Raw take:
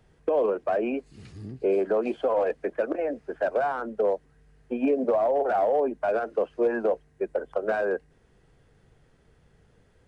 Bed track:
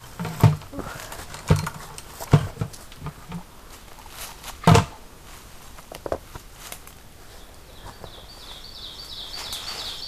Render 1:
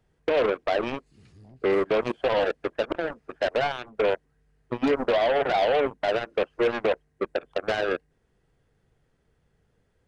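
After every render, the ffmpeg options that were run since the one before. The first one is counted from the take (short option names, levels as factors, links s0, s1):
-af "aeval=exprs='0.178*(cos(1*acos(clip(val(0)/0.178,-1,1)))-cos(1*PI/2))+0.0355*(cos(7*acos(clip(val(0)/0.178,-1,1)))-cos(7*PI/2))':c=same"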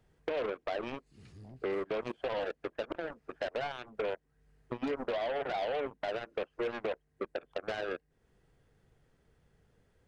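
-af "acompressor=threshold=0.00891:ratio=2"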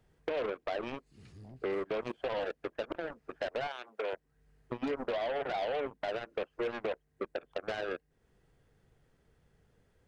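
-filter_complex "[0:a]asettb=1/sr,asplit=3[s0][s1][s2];[s0]atrim=end=3.674[s3];[s1]atrim=start=3.67:end=4.13,asetpts=PTS-STARTPTS,afade=t=in:d=0.004:c=qsin,afade=t=out:st=0.456:d=0.004:c=qsin,highpass=410[s4];[s2]atrim=start=4.126[s5];[s3][s4]acrossfade=d=0.004:c1=hsin:c2=qsin[s6];[s6][s5]acrossfade=d=0.004:c1=qsin:c2=hsin"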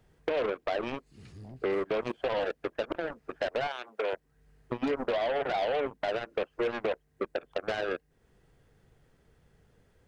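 -af "volume=1.68"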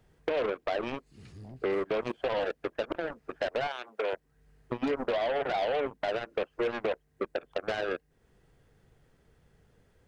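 -af anull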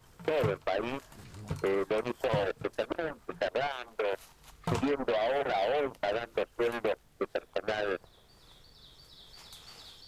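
-filter_complex "[1:a]volume=0.119[s0];[0:a][s0]amix=inputs=2:normalize=0"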